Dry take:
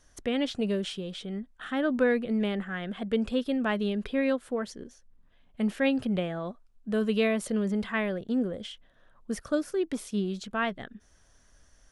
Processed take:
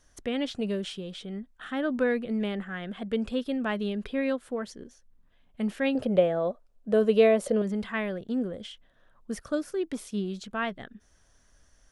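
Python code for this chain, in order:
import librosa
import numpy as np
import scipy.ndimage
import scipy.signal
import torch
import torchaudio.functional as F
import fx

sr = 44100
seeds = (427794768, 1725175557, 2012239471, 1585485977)

y = fx.peak_eq(x, sr, hz=550.0, db=14.0, octaves=0.88, at=(5.95, 7.62))
y = y * 10.0 ** (-1.5 / 20.0)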